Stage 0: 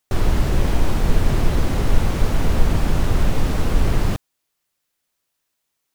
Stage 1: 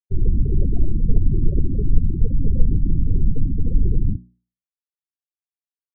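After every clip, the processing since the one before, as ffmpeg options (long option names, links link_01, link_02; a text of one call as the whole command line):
ffmpeg -i in.wav -af "aemphasis=mode=reproduction:type=50kf,afftfilt=real='re*gte(hypot(re,im),0.251)':imag='im*gte(hypot(re,im),0.251)':win_size=1024:overlap=0.75,bandreject=frequency=60:width_type=h:width=6,bandreject=frequency=120:width_type=h:width=6,bandreject=frequency=180:width_type=h:width=6,bandreject=frequency=240:width_type=h:width=6,bandreject=frequency=300:width_type=h:width=6,bandreject=frequency=360:width_type=h:width=6,volume=1dB" out.wav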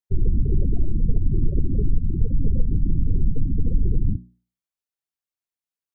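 ffmpeg -i in.wav -af "acompressor=threshold=-15dB:ratio=3,volume=1dB" out.wav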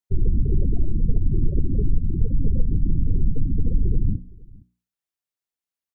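ffmpeg -i in.wav -af "aecho=1:1:464:0.0631" out.wav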